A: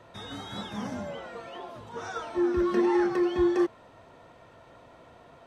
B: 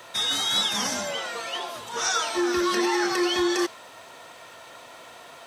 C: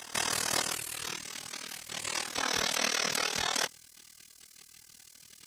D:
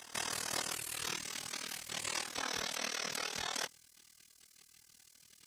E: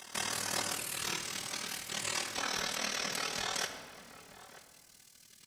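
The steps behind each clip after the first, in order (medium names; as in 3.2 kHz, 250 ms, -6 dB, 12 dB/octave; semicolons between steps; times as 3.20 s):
tilt EQ +4.5 dB/octave; peak limiter -24.5 dBFS, peak gain reduction 6 dB; dynamic bell 5.1 kHz, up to +5 dB, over -50 dBFS, Q 1; trim +8.5 dB
spectral gate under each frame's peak -20 dB weak; AM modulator 39 Hz, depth 85%; pre-echo 182 ms -15 dB; trim +7 dB
gain riding within 5 dB 0.5 s; trim -6 dB
echo from a far wall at 160 m, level -14 dB; reverberation RT60 1.7 s, pre-delay 5 ms, DRR 5 dB; trim +2 dB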